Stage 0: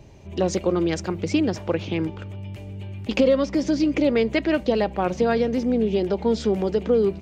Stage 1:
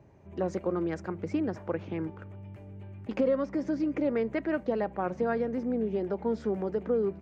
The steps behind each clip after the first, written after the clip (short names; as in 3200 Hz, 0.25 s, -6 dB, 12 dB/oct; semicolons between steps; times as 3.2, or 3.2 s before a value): HPF 82 Hz; resonant high shelf 2300 Hz -11 dB, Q 1.5; gain -8.5 dB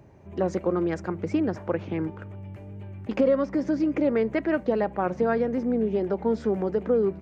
wow and flutter 26 cents; gain +5 dB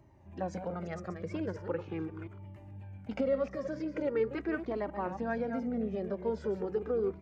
reverse delay 0.175 s, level -9 dB; cascading flanger falling 0.41 Hz; gain -4 dB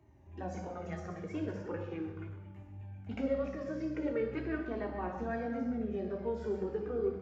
reverb RT60 1.0 s, pre-delay 3 ms, DRR 2 dB; gain -9 dB